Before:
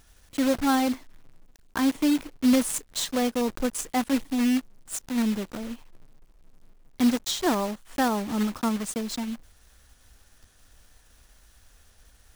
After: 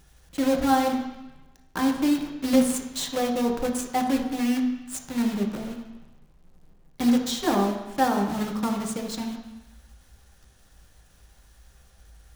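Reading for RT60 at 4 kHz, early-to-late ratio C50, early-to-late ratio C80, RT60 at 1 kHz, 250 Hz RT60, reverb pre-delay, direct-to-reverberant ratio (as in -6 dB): 1.1 s, 6.0 dB, 8.0 dB, 1.1 s, 0.95 s, 3 ms, 1.0 dB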